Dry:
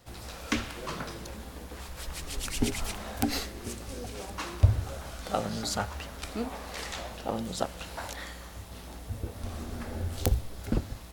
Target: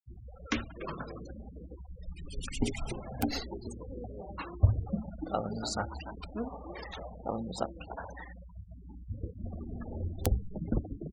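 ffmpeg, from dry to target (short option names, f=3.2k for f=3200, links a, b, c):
-filter_complex "[0:a]asplit=6[a][b][c][d][e][f];[b]adelay=291,afreqshift=110,volume=-11.5dB[g];[c]adelay=582,afreqshift=220,volume=-18.1dB[h];[d]adelay=873,afreqshift=330,volume=-24.6dB[i];[e]adelay=1164,afreqshift=440,volume=-31.2dB[j];[f]adelay=1455,afreqshift=550,volume=-37.7dB[k];[a][g][h][i][j][k]amix=inputs=6:normalize=0,afftfilt=real='re*gte(hypot(re,im),0.0251)':imag='im*gte(hypot(re,im),0.0251)':win_size=1024:overlap=0.75,volume=-2.5dB"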